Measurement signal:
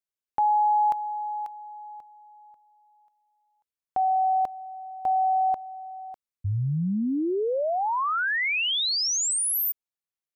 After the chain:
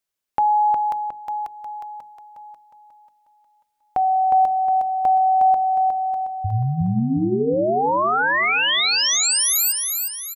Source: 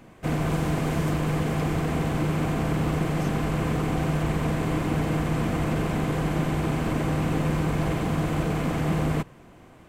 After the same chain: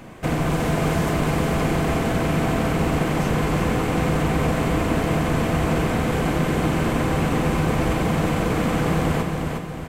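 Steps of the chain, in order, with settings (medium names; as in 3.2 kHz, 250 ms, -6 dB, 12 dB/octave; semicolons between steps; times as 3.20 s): hum notches 50/100/150/200/250/300/350/400/450 Hz; in parallel at +2.5 dB: compression, threshold -35 dBFS; on the sum: feedback delay 361 ms, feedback 45%, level -4.5 dB; trim +2 dB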